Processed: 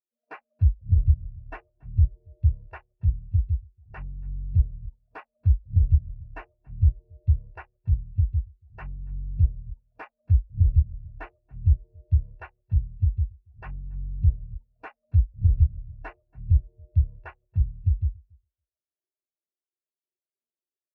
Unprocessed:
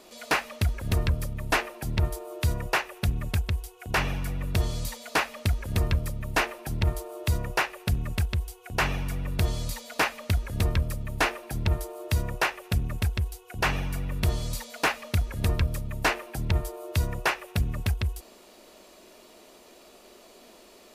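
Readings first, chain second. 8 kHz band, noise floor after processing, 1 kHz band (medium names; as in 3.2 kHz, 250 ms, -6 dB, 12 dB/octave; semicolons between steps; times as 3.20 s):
under -40 dB, under -85 dBFS, -17.0 dB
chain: local Wiener filter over 25 samples; feedback delay 281 ms, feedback 24%, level -12 dB; spectral contrast expander 2.5:1; trim +4.5 dB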